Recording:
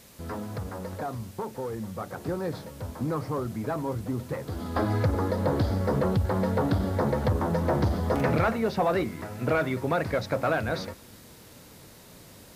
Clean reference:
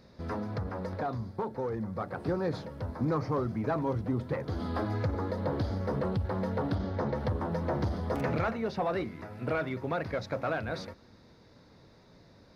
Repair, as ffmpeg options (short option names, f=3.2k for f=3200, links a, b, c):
-af "afwtdn=0.0022,asetnsamples=n=441:p=0,asendcmd='4.76 volume volume -6dB',volume=0dB"